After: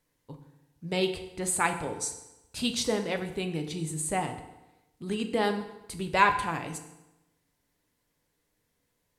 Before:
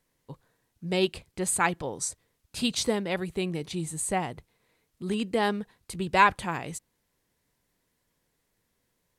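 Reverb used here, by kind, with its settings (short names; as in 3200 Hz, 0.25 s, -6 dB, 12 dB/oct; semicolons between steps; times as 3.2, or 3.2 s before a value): FDN reverb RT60 0.98 s, low-frequency decay 1.05×, high-frequency decay 0.8×, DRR 5.5 dB; gain -2 dB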